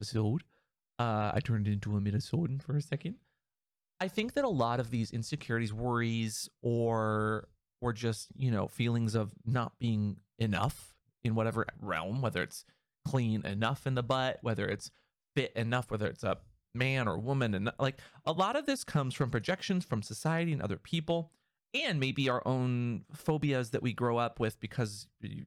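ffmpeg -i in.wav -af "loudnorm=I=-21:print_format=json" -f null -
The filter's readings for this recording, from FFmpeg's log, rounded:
"input_i" : "-33.7",
"input_tp" : "-19.3",
"input_lra" : "1.7",
"input_thresh" : "-44.0",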